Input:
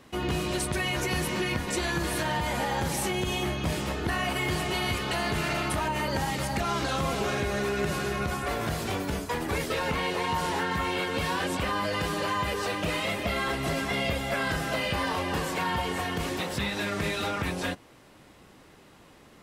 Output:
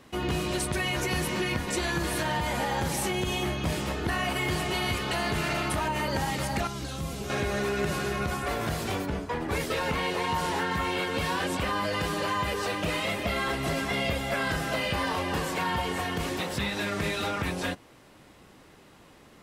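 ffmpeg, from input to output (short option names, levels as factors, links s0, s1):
-filter_complex "[0:a]asettb=1/sr,asplit=3[s0][s1][s2];[s0]atrim=end=6.674[s3];[s1]atrim=start=6.67:end=7.3,asetpts=PTS-STARTPTS,afade=t=in:d=0.004:c=qsin,afade=t=out:st=0.626:d=0.004:c=qsin,equalizer=f=1100:w=0.3:g=-12.5[s4];[s2]atrim=start=7.296[s5];[s3][s4]acrossfade=d=0.004:c1=hsin:c2=qsin[s6];[s6][s5]acrossfade=d=0.004:c1=qsin:c2=hsin,asplit=3[s7][s8][s9];[s7]afade=t=out:st=9.05:d=0.02[s10];[s8]aemphasis=mode=reproduction:type=75kf,afade=t=in:st=9.05:d=0.02,afade=t=out:st=9.5:d=0.02[s11];[s9]afade=t=in:st=9.5:d=0.02[s12];[s10][s11][s12]amix=inputs=3:normalize=0"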